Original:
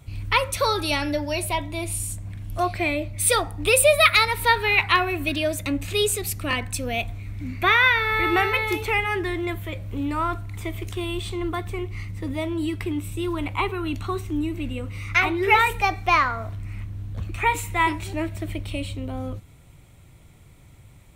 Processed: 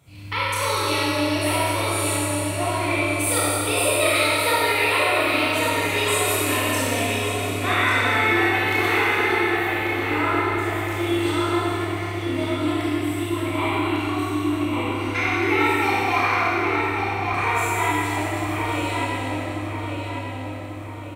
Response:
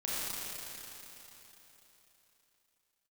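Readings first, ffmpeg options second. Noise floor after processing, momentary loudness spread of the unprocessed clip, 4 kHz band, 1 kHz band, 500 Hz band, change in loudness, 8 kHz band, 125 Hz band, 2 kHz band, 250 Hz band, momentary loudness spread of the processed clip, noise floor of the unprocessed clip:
-31 dBFS, 15 LU, +1.5 dB, +1.5 dB, +2.0 dB, +1.5 dB, +2.0 dB, +2.0 dB, +1.5 dB, +4.5 dB, 8 LU, -49 dBFS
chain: -filter_complex "[0:a]highpass=93,lowshelf=f=140:g=-7,acompressor=threshold=-22dB:ratio=3,asplit=2[a][b];[b]adelay=1142,lowpass=f=2.9k:p=1,volume=-3dB,asplit=2[c][d];[d]adelay=1142,lowpass=f=2.9k:p=1,volume=0.48,asplit=2[e][f];[f]adelay=1142,lowpass=f=2.9k:p=1,volume=0.48,asplit=2[g][h];[h]adelay=1142,lowpass=f=2.9k:p=1,volume=0.48,asplit=2[i][j];[j]adelay=1142,lowpass=f=2.9k:p=1,volume=0.48,asplit=2[k][l];[l]adelay=1142,lowpass=f=2.9k:p=1,volume=0.48[m];[a][c][e][g][i][k][m]amix=inputs=7:normalize=0[n];[1:a]atrim=start_sample=2205,asetrate=52920,aresample=44100[o];[n][o]afir=irnorm=-1:irlink=0"

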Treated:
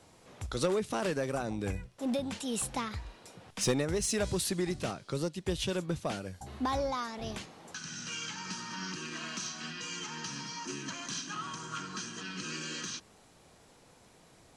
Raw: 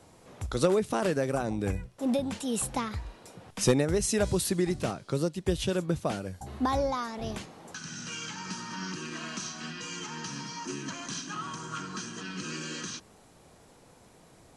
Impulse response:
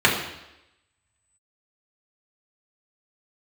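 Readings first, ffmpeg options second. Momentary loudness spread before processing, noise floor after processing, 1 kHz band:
12 LU, -60 dBFS, -3.5 dB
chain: -filter_complex "[0:a]lowpass=f=4k:p=1,highshelf=f=2.1k:g=9.5,asplit=2[a][b];[b]asoftclip=type=hard:threshold=-24.5dB,volume=-4dB[c];[a][c]amix=inputs=2:normalize=0,volume=-8.5dB"

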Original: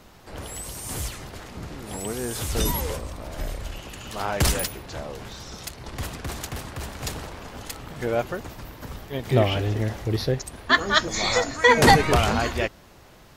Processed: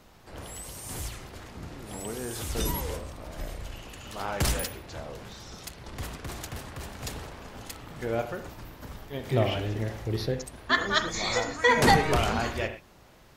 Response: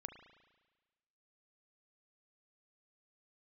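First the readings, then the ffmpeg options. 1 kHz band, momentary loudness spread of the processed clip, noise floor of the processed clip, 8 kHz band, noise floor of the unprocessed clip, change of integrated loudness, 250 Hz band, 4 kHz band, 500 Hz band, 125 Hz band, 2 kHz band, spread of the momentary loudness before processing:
-5.0 dB, 19 LU, -55 dBFS, -5.5 dB, -50 dBFS, -5.0 dB, -4.5 dB, -5.5 dB, -5.0 dB, -5.0 dB, -5.0 dB, 19 LU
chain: -filter_complex "[1:a]atrim=start_sample=2205,atrim=end_sample=6174[a];[0:a][a]afir=irnorm=-1:irlink=0"

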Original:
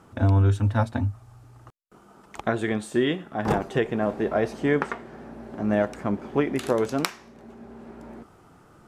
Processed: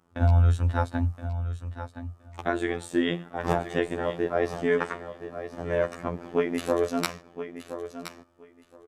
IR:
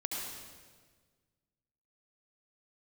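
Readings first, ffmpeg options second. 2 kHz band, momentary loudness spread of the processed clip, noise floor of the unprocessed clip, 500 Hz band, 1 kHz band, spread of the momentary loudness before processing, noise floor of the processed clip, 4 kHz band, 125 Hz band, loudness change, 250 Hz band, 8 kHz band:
-1.5 dB, 15 LU, -54 dBFS, -1.0 dB, -1.5 dB, 21 LU, -58 dBFS, -1.5 dB, -1.5 dB, -2.5 dB, -4.0 dB, -1.5 dB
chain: -af "afftfilt=real='hypot(re,im)*cos(PI*b)':imag='0':win_size=2048:overlap=0.75,agate=range=-13dB:threshold=-44dB:ratio=16:detection=peak,aecho=1:1:1020|2040:0.282|0.0451,volume=1.5dB"

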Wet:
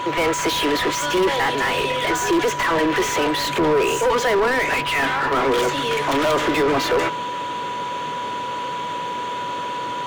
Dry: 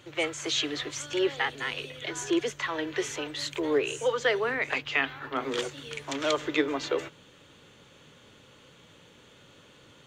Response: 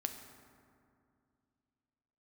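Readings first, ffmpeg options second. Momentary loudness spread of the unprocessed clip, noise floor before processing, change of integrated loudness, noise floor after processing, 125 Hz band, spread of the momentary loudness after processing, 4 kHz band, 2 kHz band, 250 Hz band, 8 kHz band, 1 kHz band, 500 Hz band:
7 LU, -56 dBFS, +9.0 dB, -27 dBFS, +13.0 dB, 8 LU, +8.5 dB, +9.5 dB, +9.5 dB, +9.5 dB, +17.0 dB, +10.0 dB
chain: -filter_complex "[0:a]asplit=2[a][b];[b]highpass=f=720:p=1,volume=34dB,asoftclip=type=tanh:threshold=-11dB[c];[a][c]amix=inputs=2:normalize=0,lowpass=f=1k:p=1,volume=-6dB,highshelf=f=8.2k:g=10,asplit=2[d][e];[e]aeval=exprs='0.075*(abs(mod(val(0)/0.075+3,4)-2)-1)':c=same,volume=-12dB[f];[d][f]amix=inputs=2:normalize=0,aeval=exprs='val(0)+0.0501*sin(2*PI*980*n/s)':c=same,volume=1dB"

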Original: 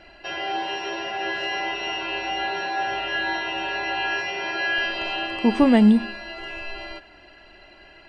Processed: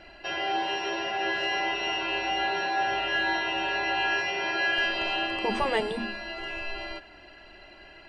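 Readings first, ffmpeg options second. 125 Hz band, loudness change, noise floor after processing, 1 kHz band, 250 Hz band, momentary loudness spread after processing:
-13.0 dB, -4.0 dB, -50 dBFS, -1.0 dB, -15.0 dB, 9 LU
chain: -af "afftfilt=real='re*lt(hypot(re,im),0.794)':imag='im*lt(hypot(re,im),0.794)':win_size=1024:overlap=0.75,aeval=exprs='0.251*(cos(1*acos(clip(val(0)/0.251,-1,1)))-cos(1*PI/2))+0.00447*(cos(5*acos(clip(val(0)/0.251,-1,1)))-cos(5*PI/2))':c=same,volume=-1.5dB"

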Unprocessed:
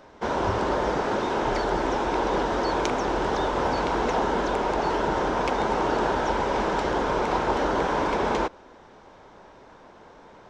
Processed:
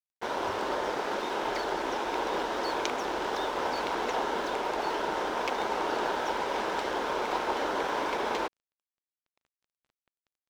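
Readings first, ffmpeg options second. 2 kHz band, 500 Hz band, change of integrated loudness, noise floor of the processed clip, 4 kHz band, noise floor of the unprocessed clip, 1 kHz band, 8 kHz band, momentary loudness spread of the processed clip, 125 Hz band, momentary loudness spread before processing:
-3.5 dB, -6.5 dB, -5.5 dB, under -85 dBFS, -1.5 dB, -50 dBFS, -5.5 dB, -2.5 dB, 2 LU, -17.0 dB, 1 LU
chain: -filter_complex "[0:a]acrossover=split=250 4600:gain=0.2 1 0.2[a][b][c];[a][b][c]amix=inputs=3:normalize=0,crystalizer=i=3.5:c=0,aeval=exprs='sgn(val(0))*max(abs(val(0))-0.0106,0)':c=same,volume=-5dB"

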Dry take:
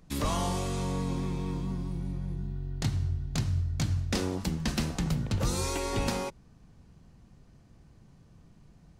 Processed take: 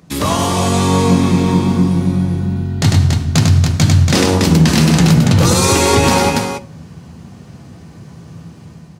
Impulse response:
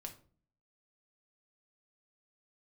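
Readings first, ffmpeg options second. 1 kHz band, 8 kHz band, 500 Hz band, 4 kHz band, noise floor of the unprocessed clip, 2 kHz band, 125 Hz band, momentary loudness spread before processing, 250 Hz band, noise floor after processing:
+19.5 dB, +19.5 dB, +19.0 dB, +19.5 dB, -58 dBFS, +20.0 dB, +19.0 dB, 6 LU, +20.5 dB, -38 dBFS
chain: -filter_complex "[0:a]highpass=f=84:w=0.5412,highpass=f=84:w=1.3066,dynaudnorm=f=480:g=3:m=7.5dB,aecho=1:1:99.13|282.8:0.501|0.398,asplit=2[a][b];[1:a]atrim=start_sample=2205,adelay=12[c];[b][c]afir=irnorm=-1:irlink=0,volume=-6dB[d];[a][d]amix=inputs=2:normalize=0,alimiter=level_in=14dB:limit=-1dB:release=50:level=0:latency=1,volume=-1dB"

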